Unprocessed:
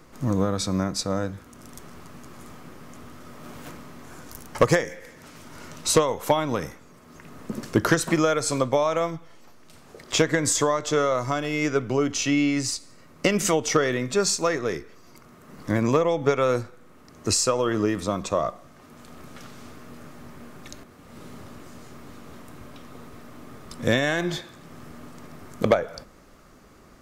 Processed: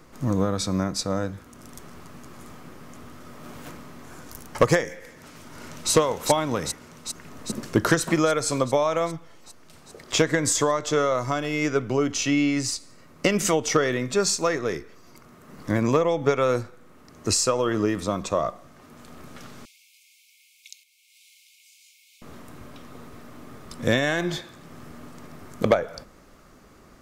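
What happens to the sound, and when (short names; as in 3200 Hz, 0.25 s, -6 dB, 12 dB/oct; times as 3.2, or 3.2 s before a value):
5.17–5.91 echo throw 0.4 s, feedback 75%, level -3 dB
19.65–22.22 brick-wall FIR high-pass 2100 Hz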